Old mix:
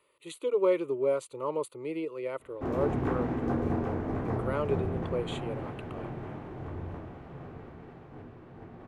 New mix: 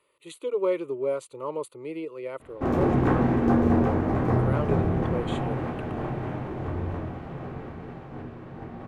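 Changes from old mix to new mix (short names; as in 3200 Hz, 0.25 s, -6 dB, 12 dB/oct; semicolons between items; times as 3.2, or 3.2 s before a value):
background +6.0 dB; reverb: on, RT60 0.60 s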